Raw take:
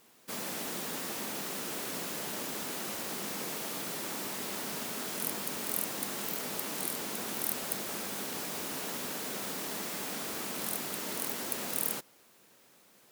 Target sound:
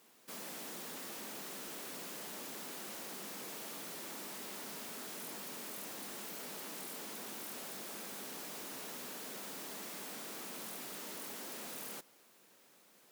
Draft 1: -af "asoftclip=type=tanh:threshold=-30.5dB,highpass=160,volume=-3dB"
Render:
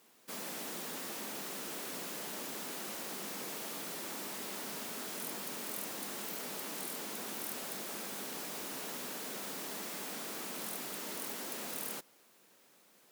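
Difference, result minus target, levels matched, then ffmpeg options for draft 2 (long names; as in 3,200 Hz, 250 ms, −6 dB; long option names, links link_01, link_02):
soft clipping: distortion −5 dB
-af "asoftclip=type=tanh:threshold=-39.5dB,highpass=160,volume=-3dB"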